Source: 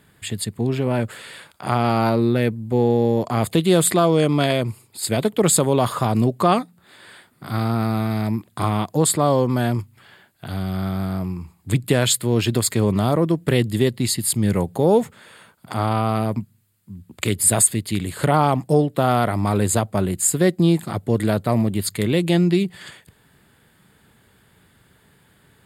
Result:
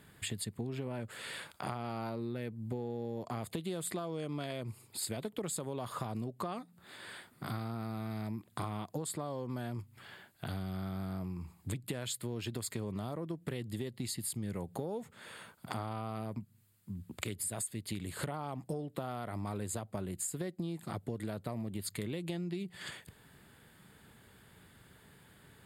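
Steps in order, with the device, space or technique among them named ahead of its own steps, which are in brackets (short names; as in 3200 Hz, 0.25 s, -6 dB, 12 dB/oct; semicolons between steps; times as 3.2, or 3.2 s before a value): serial compression, leveller first (compressor 2:1, threshold -20 dBFS, peak gain reduction 5.5 dB; compressor 5:1, threshold -33 dBFS, peak gain reduction 15.5 dB); gain -3.5 dB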